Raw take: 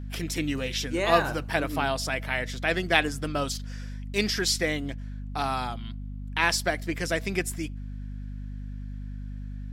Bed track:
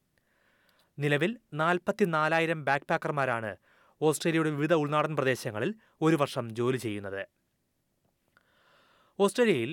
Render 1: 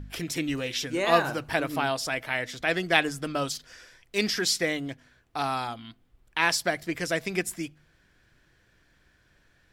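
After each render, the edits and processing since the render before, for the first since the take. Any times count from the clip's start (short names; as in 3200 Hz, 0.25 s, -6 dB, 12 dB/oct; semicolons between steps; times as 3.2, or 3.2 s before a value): de-hum 50 Hz, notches 5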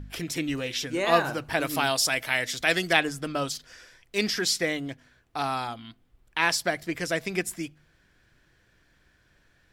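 1.6–2.93 high shelf 3100 Hz +12 dB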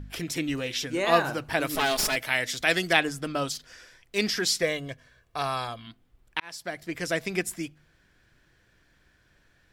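1.75–2.16 minimum comb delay 4.7 ms; 4.62–5.87 comb 1.8 ms, depth 54%; 6.4–7.11 fade in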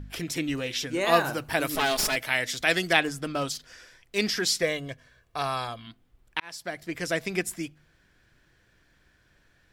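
1.01–1.7 high shelf 10000 Hz +11 dB; 3.02–3.48 hard clip -22 dBFS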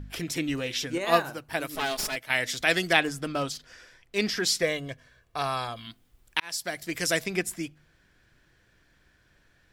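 0.98–2.3 upward expander, over -39 dBFS; 3.42–4.44 high shelf 4900 Hz -5 dB; 5.76–7.24 high shelf 3600 Hz +11.5 dB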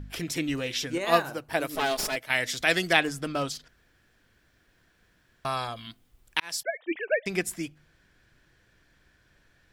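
1.31–2.26 bell 520 Hz +4.5 dB 1.9 oct; 3.68–5.45 room tone; 6.63–7.26 sine-wave speech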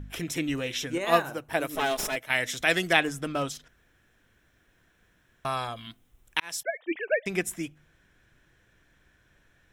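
bell 4600 Hz -12.5 dB 0.21 oct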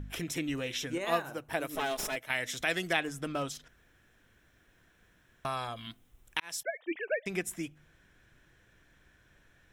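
compressor 1.5:1, threshold -39 dBFS, peak gain reduction 8.5 dB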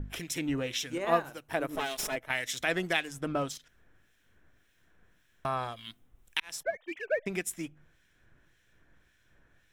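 in parallel at -3.5 dB: backlash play -37 dBFS; on the sum: harmonic tremolo 1.8 Hz, depth 70%, crossover 1900 Hz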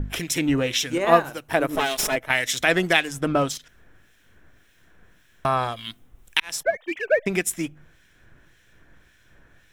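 gain +10 dB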